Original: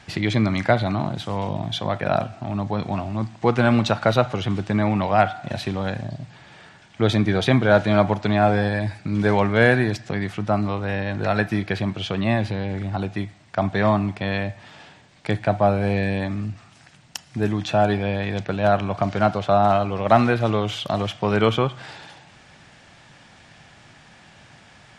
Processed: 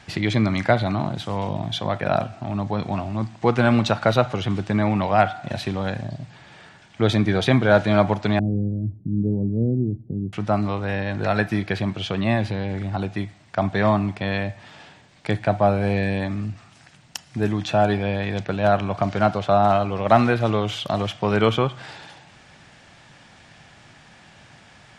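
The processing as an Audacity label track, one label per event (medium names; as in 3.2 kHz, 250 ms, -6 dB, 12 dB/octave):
8.390000	10.330000	inverse Chebyshev low-pass stop band from 1.5 kHz, stop band 70 dB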